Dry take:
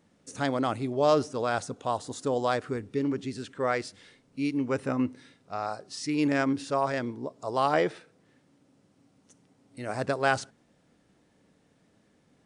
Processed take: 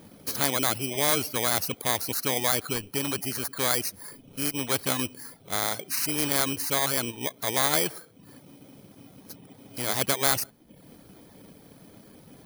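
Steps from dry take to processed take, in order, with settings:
samples in bit-reversed order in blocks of 16 samples
reverb reduction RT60 0.53 s
every bin compressed towards the loudest bin 2 to 1
level +4.5 dB

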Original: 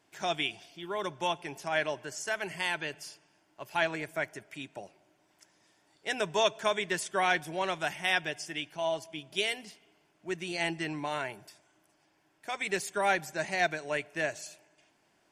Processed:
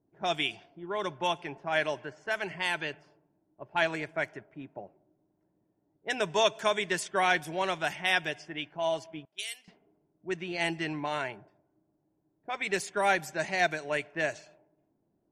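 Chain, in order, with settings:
low-pass that shuts in the quiet parts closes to 340 Hz, open at −27.5 dBFS
0:09.25–0:09.68: first difference
level +1.5 dB

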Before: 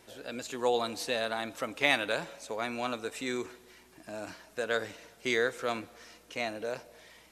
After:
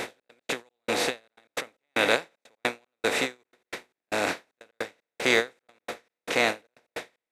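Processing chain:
compressor on every frequency bin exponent 0.4
gate pattern "xx.x.xx..xx" 153 BPM −60 dB
every ending faded ahead of time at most 300 dB per second
level +3.5 dB

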